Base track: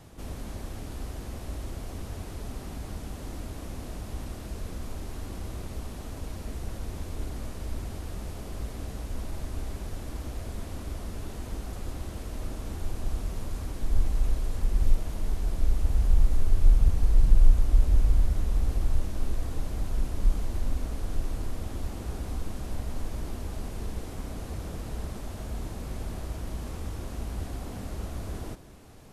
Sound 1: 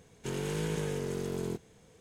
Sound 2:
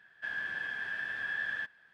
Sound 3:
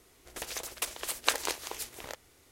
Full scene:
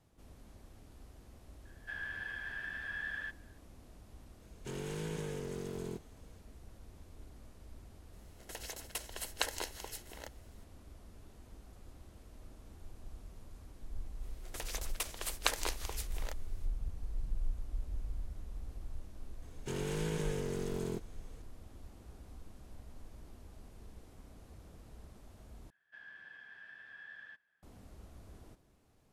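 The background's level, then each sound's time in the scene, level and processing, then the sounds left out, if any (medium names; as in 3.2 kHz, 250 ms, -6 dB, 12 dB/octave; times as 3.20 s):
base track -18.5 dB
1.65 s: add 2 -5.5 dB
4.41 s: add 1 -6.5 dB
8.13 s: add 3 -6 dB + comb of notches 1.2 kHz
14.18 s: add 3 -4.5 dB, fades 0.05 s
19.42 s: add 1 -3 dB
25.70 s: replace with 2 -16.5 dB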